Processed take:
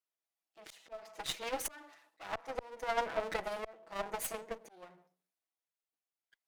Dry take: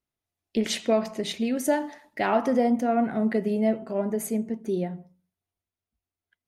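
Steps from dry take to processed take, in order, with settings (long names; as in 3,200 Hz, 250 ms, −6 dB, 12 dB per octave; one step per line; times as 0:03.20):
lower of the sound and its delayed copy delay 6.1 ms
high-pass filter 530 Hz 12 dB per octave
volume swells 592 ms
in parallel at −7.5 dB: soft clipping −28.5 dBFS, distortion −15 dB
on the sum: transient designer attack +7 dB, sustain +3 dB
harmonic generator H 6 −19 dB, 7 −29 dB, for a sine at −14 dBFS
level −6 dB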